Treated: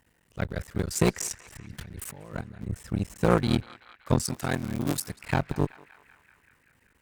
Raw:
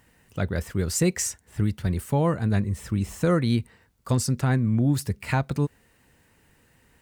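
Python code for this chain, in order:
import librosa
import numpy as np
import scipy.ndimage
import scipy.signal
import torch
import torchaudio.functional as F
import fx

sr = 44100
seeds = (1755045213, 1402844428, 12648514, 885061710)

p1 = fx.cycle_switch(x, sr, every=3, mode='muted')
p2 = fx.over_compress(p1, sr, threshold_db=-36.0, ratio=-1.0, at=(1.29, 2.61), fade=0.02)
p3 = fx.cheby_harmonics(p2, sr, harmonics=(3,), levels_db=(-13,), full_scale_db=-11.0)
p4 = fx.tilt_eq(p3, sr, slope=2.5, at=(4.25, 5.16))
p5 = p4 + fx.echo_banded(p4, sr, ms=191, feedback_pct=78, hz=1900.0, wet_db=-16.0, dry=0)
y = p5 * librosa.db_to_amplitude(4.5)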